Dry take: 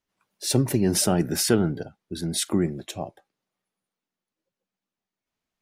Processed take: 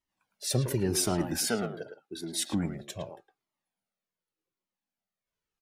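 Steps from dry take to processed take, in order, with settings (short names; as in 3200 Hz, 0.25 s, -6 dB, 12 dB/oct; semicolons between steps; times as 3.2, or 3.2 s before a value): 1.38–2.47 HPF 250 Hz 12 dB/oct; speakerphone echo 0.11 s, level -6 dB; cascading flanger falling 0.86 Hz; gain -1 dB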